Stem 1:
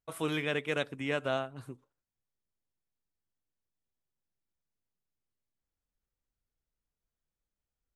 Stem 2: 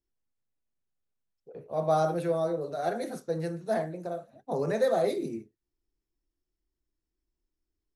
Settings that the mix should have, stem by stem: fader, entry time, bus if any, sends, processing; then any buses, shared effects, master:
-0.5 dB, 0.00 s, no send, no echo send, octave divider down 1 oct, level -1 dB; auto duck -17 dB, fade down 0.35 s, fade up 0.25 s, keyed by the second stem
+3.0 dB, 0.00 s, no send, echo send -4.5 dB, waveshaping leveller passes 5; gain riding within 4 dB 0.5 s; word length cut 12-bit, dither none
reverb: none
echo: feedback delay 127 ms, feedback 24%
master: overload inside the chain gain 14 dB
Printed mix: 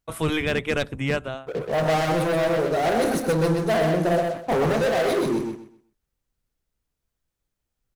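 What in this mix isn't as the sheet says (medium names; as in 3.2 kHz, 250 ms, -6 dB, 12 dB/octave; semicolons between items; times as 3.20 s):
stem 1 -0.5 dB -> +8.0 dB; stem 2 +3.0 dB -> -3.5 dB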